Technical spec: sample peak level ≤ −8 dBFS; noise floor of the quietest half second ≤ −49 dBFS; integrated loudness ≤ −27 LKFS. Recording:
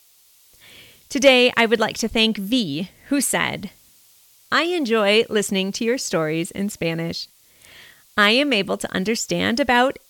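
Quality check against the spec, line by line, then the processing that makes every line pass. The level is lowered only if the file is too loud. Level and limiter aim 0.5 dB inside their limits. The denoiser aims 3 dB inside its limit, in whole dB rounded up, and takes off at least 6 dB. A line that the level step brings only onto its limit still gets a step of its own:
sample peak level −3.5 dBFS: out of spec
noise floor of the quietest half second −55 dBFS: in spec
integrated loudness −19.5 LKFS: out of spec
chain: level −8 dB

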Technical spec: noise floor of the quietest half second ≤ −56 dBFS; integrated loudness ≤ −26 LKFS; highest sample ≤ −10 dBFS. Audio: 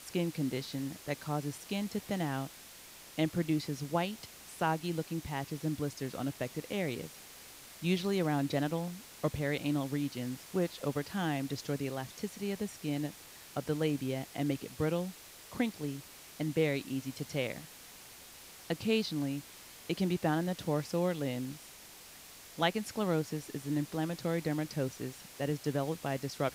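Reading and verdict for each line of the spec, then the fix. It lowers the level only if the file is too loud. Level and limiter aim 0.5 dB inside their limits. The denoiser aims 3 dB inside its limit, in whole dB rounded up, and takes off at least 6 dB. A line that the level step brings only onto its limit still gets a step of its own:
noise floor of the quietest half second −53 dBFS: out of spec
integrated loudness −35.5 LKFS: in spec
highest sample −15.5 dBFS: in spec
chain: broadband denoise 6 dB, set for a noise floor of −53 dBFS

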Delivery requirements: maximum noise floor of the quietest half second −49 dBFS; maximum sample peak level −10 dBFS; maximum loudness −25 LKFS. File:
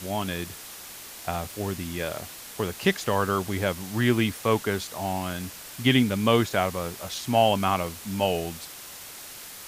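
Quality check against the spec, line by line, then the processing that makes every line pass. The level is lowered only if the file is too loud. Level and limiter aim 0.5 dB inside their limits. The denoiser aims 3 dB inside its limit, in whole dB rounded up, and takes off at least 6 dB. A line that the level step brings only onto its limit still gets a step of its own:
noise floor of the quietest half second −42 dBFS: out of spec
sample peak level −6.0 dBFS: out of spec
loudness −26.5 LKFS: in spec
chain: broadband denoise 10 dB, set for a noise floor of −42 dBFS
brickwall limiter −10.5 dBFS

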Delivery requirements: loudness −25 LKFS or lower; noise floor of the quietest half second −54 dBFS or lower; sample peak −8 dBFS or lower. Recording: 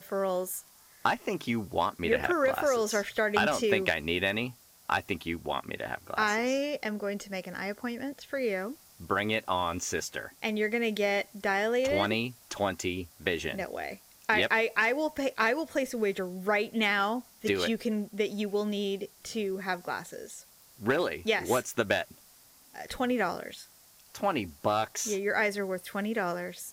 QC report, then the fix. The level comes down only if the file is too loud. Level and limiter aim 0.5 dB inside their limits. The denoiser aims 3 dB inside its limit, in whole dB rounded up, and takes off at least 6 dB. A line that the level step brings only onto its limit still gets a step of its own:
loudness −30.0 LKFS: in spec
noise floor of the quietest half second −58 dBFS: in spec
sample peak −9.5 dBFS: in spec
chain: no processing needed

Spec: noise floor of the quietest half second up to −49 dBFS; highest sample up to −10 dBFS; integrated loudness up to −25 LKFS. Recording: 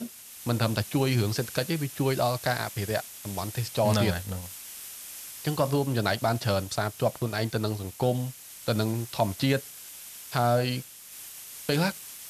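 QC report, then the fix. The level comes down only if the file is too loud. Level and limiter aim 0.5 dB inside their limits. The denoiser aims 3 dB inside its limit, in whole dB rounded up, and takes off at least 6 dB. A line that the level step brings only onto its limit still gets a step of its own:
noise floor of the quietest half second −45 dBFS: out of spec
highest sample −9.0 dBFS: out of spec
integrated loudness −28.5 LKFS: in spec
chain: broadband denoise 7 dB, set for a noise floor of −45 dBFS
brickwall limiter −10.5 dBFS

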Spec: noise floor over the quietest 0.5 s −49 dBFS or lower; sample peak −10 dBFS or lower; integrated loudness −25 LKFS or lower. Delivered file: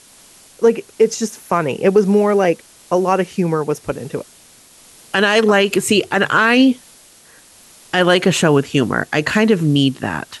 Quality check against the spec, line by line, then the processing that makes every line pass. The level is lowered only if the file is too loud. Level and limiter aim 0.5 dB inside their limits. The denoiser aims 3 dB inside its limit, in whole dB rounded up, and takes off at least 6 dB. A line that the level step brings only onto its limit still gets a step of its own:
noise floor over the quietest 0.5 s −46 dBFS: out of spec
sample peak −3.0 dBFS: out of spec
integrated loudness −16.0 LKFS: out of spec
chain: level −9.5 dB

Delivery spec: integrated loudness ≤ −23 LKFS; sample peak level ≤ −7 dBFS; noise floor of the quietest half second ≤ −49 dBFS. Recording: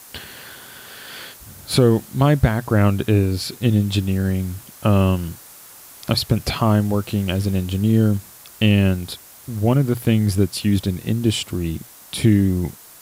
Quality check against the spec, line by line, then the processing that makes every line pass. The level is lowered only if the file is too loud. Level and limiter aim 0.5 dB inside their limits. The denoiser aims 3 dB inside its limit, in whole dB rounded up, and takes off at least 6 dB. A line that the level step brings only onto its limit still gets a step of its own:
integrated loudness −19.5 LKFS: out of spec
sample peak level −3.5 dBFS: out of spec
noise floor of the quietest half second −43 dBFS: out of spec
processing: broadband denoise 6 dB, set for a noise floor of −43 dBFS
level −4 dB

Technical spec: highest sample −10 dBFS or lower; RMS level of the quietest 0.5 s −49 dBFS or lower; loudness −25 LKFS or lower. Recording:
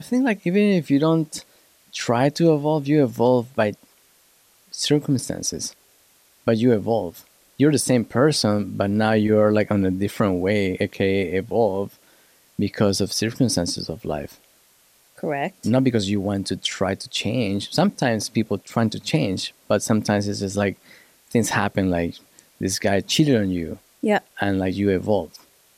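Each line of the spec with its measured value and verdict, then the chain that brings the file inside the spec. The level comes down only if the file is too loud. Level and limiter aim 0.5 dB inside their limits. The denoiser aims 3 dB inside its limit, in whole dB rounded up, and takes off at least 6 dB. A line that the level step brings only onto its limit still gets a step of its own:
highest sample −6.0 dBFS: out of spec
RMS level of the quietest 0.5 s −58 dBFS: in spec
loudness −21.5 LKFS: out of spec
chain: level −4 dB
brickwall limiter −10.5 dBFS

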